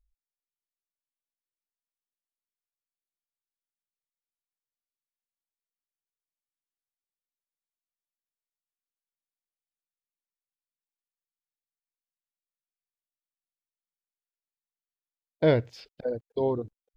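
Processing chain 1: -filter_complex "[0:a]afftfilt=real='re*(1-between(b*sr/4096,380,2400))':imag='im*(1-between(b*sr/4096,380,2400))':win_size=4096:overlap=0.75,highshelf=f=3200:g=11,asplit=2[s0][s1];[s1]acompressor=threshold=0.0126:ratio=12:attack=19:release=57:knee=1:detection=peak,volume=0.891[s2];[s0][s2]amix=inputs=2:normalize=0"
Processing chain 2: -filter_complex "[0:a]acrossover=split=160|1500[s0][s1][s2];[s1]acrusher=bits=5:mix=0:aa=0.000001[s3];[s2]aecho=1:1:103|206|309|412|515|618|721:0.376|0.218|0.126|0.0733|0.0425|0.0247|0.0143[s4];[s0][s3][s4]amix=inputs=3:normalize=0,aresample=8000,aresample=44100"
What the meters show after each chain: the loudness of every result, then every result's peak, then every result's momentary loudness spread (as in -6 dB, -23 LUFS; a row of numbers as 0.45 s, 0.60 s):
-31.5 LUFS, -28.0 LUFS; -14.0 dBFS, -9.5 dBFS; 10 LU, 11 LU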